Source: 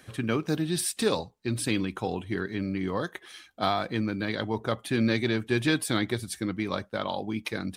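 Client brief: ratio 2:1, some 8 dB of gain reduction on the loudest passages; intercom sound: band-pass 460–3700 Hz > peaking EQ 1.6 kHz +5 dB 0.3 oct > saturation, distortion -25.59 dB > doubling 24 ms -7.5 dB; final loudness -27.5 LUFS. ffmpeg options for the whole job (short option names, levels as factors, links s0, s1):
-filter_complex "[0:a]acompressor=threshold=0.0178:ratio=2,highpass=460,lowpass=3700,equalizer=f=1600:t=o:w=0.3:g=5,asoftclip=threshold=0.0841,asplit=2[s0][s1];[s1]adelay=24,volume=0.422[s2];[s0][s2]amix=inputs=2:normalize=0,volume=3.76"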